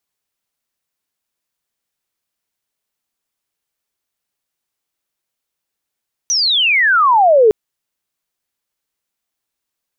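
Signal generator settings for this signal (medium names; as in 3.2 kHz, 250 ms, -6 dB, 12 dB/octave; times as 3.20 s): sweep logarithmic 6.1 kHz -> 410 Hz -12.5 dBFS -> -5.5 dBFS 1.21 s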